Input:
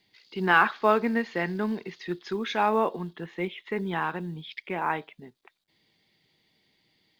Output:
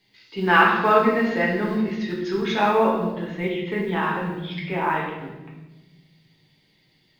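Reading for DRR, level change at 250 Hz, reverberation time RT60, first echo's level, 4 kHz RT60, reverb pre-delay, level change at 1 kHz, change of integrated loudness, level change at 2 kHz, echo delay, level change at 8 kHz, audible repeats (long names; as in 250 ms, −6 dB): −4.5 dB, +6.5 dB, 1.1 s, no echo audible, 0.85 s, 7 ms, +5.5 dB, +5.5 dB, +5.0 dB, no echo audible, can't be measured, no echo audible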